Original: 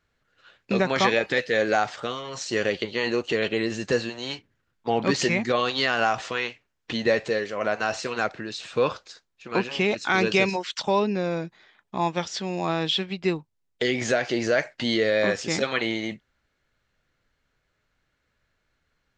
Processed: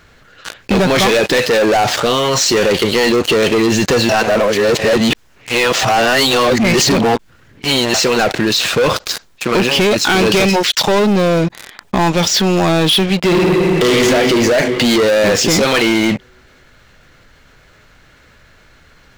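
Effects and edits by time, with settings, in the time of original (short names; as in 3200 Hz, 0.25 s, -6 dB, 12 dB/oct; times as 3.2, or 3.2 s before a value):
4.09–7.94 reverse
13.23–13.96 reverb throw, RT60 2.4 s, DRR -4 dB
whole clip: dynamic EQ 1400 Hz, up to -5 dB, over -37 dBFS, Q 0.97; sample leveller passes 5; fast leveller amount 50%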